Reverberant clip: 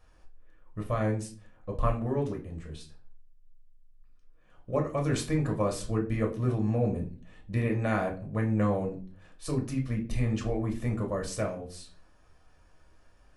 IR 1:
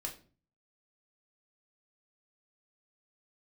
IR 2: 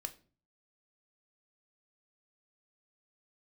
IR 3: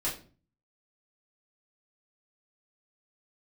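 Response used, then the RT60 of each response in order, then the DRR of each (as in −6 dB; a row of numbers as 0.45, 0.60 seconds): 1; 0.40, 0.40, 0.40 seconds; 0.5, 8.0, −7.5 decibels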